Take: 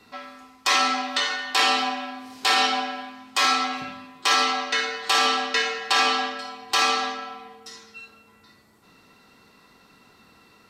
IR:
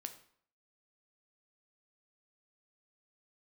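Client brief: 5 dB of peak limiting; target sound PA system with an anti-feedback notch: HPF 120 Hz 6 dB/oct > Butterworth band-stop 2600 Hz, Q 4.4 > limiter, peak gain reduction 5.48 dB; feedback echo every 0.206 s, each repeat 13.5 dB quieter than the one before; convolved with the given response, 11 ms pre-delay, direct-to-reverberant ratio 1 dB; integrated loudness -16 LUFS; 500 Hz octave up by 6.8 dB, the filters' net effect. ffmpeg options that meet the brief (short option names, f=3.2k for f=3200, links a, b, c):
-filter_complex "[0:a]equalizer=f=500:t=o:g=8,alimiter=limit=-12.5dB:level=0:latency=1,aecho=1:1:206|412:0.211|0.0444,asplit=2[a][b];[1:a]atrim=start_sample=2205,adelay=11[c];[b][c]afir=irnorm=-1:irlink=0,volume=2.5dB[d];[a][d]amix=inputs=2:normalize=0,highpass=f=120:p=1,asuperstop=centerf=2600:order=8:qfactor=4.4,volume=7.5dB,alimiter=limit=-6dB:level=0:latency=1"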